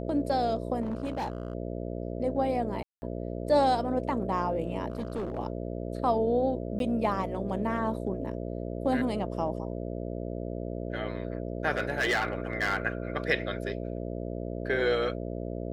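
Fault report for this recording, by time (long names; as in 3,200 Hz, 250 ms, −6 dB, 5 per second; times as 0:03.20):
mains buzz 60 Hz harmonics 11 −35 dBFS
0:00.81–0:01.55: clipping −28 dBFS
0:02.83–0:03.02: drop-out 190 ms
0:04.90–0:05.39: clipping −28.5 dBFS
0:06.79–0:06.80: drop-out 12 ms
0:11.77–0:12.86: clipping −22.5 dBFS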